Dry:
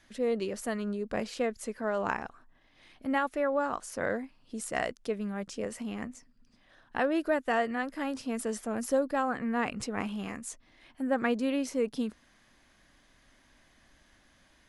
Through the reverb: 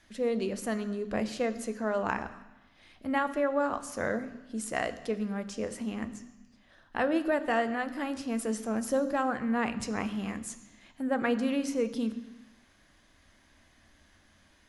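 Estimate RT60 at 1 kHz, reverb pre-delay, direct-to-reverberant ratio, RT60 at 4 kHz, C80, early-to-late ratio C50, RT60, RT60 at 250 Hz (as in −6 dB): 1.1 s, 3 ms, 10.5 dB, 1.1 s, 15.0 dB, 13.5 dB, 1.0 s, 1.0 s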